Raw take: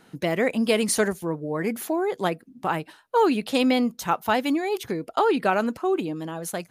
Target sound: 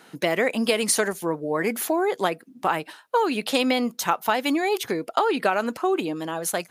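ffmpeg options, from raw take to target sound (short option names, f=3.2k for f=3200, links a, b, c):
-af "highpass=f=460:p=1,acompressor=threshold=-24dB:ratio=6,volume=6.5dB"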